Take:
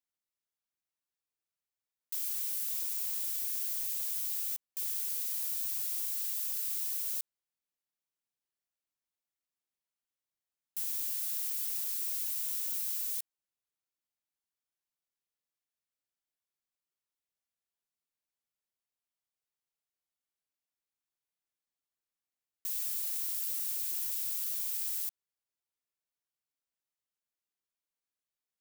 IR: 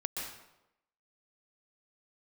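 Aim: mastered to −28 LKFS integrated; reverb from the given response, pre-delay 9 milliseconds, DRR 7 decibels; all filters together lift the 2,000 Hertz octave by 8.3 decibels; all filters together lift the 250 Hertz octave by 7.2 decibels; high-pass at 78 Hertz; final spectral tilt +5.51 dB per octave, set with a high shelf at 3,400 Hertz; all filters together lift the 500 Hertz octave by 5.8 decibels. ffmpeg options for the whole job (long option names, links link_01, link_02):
-filter_complex "[0:a]highpass=78,equalizer=frequency=250:width_type=o:gain=7.5,equalizer=frequency=500:width_type=o:gain=5,equalizer=frequency=2000:width_type=o:gain=8.5,highshelf=frequency=3400:gain=4.5,asplit=2[link_01][link_02];[1:a]atrim=start_sample=2205,adelay=9[link_03];[link_02][link_03]afir=irnorm=-1:irlink=0,volume=-9.5dB[link_04];[link_01][link_04]amix=inputs=2:normalize=0,volume=-1dB"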